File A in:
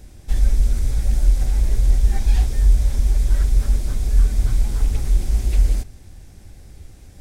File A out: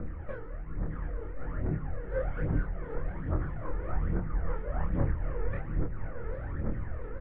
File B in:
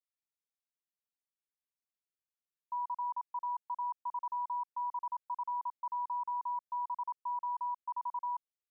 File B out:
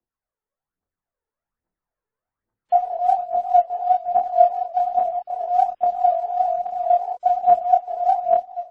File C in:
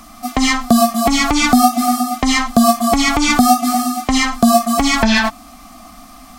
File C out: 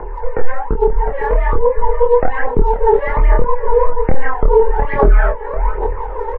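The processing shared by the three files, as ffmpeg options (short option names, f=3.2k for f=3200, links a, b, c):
-filter_complex "[0:a]bandreject=f=60:t=h:w=6,bandreject=f=120:t=h:w=6,bandreject=f=180:t=h:w=6,acompressor=threshold=-27dB:ratio=16,asplit=2[a][b];[b]adelay=507.3,volume=-12dB,highshelf=f=4k:g=-11.4[c];[a][c]amix=inputs=2:normalize=0,highpass=f=200:t=q:w=0.5412,highpass=f=200:t=q:w=1.307,lowpass=f=2.1k:t=q:w=0.5176,lowpass=f=2.1k:t=q:w=0.7071,lowpass=f=2.1k:t=q:w=1.932,afreqshift=-260,flanger=delay=18:depth=7.5:speed=2.8,tiltshelf=f=970:g=6,dynaudnorm=f=570:g=5:m=5dB,aphaser=in_gain=1:out_gain=1:delay=2.4:decay=0.69:speed=1.2:type=triangular,lowshelf=f=330:g=-4,asplit=2[d][e];[e]adelay=27,volume=-4dB[f];[d][f]amix=inputs=2:normalize=0,alimiter=level_in=12dB:limit=-1dB:release=50:level=0:latency=1,volume=-1dB" -ar 22050 -c:a wmav2 -b:a 64k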